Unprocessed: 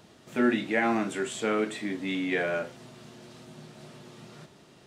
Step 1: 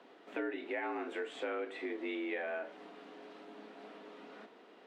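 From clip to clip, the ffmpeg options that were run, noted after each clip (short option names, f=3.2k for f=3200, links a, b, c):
-filter_complex "[0:a]acrossover=split=200 3200:gain=0.0631 1 0.0794[a][b][c];[a][b][c]amix=inputs=3:normalize=0,acompressor=threshold=-35dB:ratio=5,afreqshift=59,volume=-1dB"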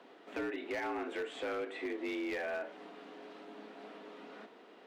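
-af "volume=34dB,asoftclip=hard,volume=-34dB,volume=1.5dB"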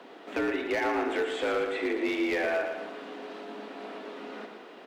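-af "aecho=1:1:115|230|345|460|575|690:0.447|0.219|0.107|0.0526|0.0258|0.0126,volume=8.5dB"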